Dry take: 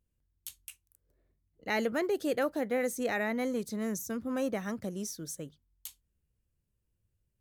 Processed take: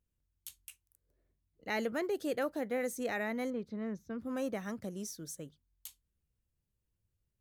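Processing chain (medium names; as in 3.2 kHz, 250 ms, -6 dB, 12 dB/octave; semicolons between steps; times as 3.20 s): 3.50–4.19 s: distance through air 330 m; trim -4 dB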